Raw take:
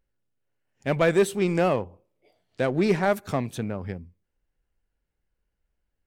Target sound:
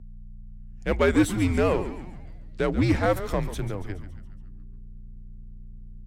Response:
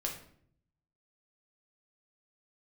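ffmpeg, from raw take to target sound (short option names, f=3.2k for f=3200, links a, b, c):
-filter_complex "[0:a]aeval=exprs='val(0)+0.00891*(sin(2*PI*60*n/s)+sin(2*PI*2*60*n/s)/2+sin(2*PI*3*60*n/s)/3+sin(2*PI*4*60*n/s)/4+sin(2*PI*5*60*n/s)/5)':c=same,asplit=7[a][b][c][d][e][f][g];[b]adelay=140,afreqshift=-97,volume=-12dB[h];[c]adelay=280,afreqshift=-194,volume=-17.2dB[i];[d]adelay=420,afreqshift=-291,volume=-22.4dB[j];[e]adelay=560,afreqshift=-388,volume=-27.6dB[k];[f]adelay=700,afreqshift=-485,volume=-32.8dB[l];[g]adelay=840,afreqshift=-582,volume=-38dB[m];[a][h][i][j][k][l][m]amix=inputs=7:normalize=0,afreqshift=-90"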